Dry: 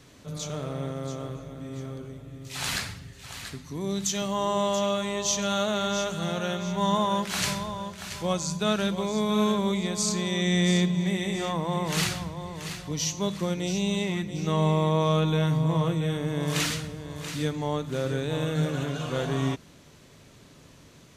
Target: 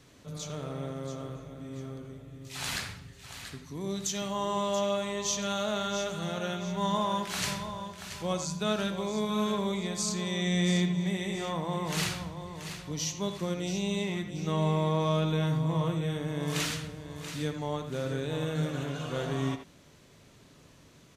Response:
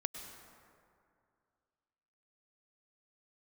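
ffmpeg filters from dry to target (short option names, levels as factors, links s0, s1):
-filter_complex "[0:a]asplit=2[s0][s1];[s1]adelay=80,highpass=300,lowpass=3400,asoftclip=type=hard:threshold=0.1,volume=0.398[s2];[s0][s2]amix=inputs=2:normalize=0,volume=0.596"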